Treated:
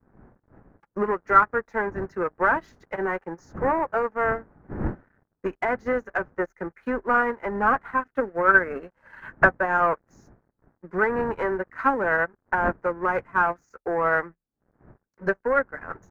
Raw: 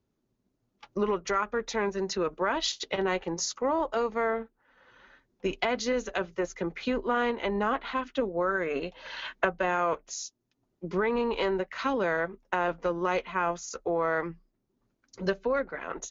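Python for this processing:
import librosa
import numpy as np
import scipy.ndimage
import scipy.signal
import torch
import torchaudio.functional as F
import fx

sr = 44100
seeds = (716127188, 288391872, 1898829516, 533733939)

y = fx.dmg_wind(x, sr, seeds[0], corner_hz=270.0, level_db=-42.0)
y = fx.peak_eq(y, sr, hz=830.0, db=3.5, octaves=0.21)
y = fx.leveller(y, sr, passes=3)
y = fx.high_shelf_res(y, sr, hz=2400.0, db=-13.0, q=3.0)
y = fx.upward_expand(y, sr, threshold_db=-26.0, expansion=2.5)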